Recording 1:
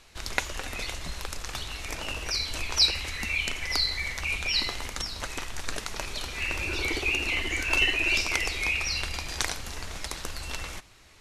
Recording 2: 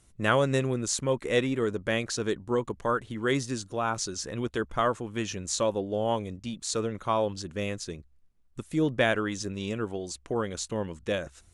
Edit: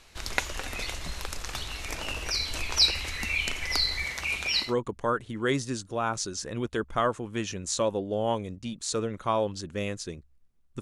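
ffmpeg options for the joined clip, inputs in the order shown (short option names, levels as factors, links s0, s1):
-filter_complex "[0:a]asettb=1/sr,asplit=3[s0][s1][s2];[s0]atrim=end=4.054[s3];[s1]atrim=start=4.05:end=4.75,asetpts=PTS-STARTPTS,afade=t=in:d=0.004:c=qsin,afade=t=out:st=0.696:d=0.004:c=qsin,highpass=f=120:p=1[s4];[s2]atrim=start=4.746[s5];[s3][s4]acrossfade=d=0.004:c1=hsin:c2=qsin[s6];[s6][s5]acrossfade=d=0.004:c1=qsin:c2=hsin,apad=whole_dur=10.81,atrim=end=10.81,atrim=end=4.75,asetpts=PTS-STARTPTS[s7];[1:a]atrim=start=2.38:end=8.62,asetpts=PTS-STARTPTS[s8];[s7][s8]acrossfade=d=0.18:c1=tri:c2=tri"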